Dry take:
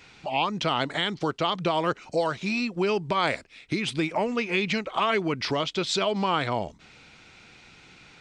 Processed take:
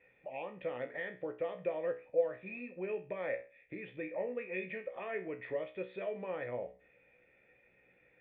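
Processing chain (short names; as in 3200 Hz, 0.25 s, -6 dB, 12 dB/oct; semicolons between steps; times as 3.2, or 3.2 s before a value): vocal tract filter e; resonator 62 Hz, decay 0.34 s, harmonics all, mix 80%; gain +5.5 dB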